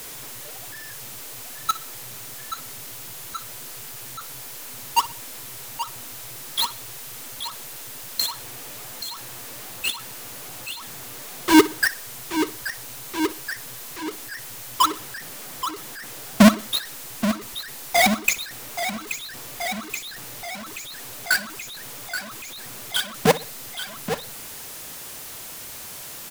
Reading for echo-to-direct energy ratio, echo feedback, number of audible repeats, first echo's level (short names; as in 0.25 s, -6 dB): -17.0 dB, 35%, 2, -17.5 dB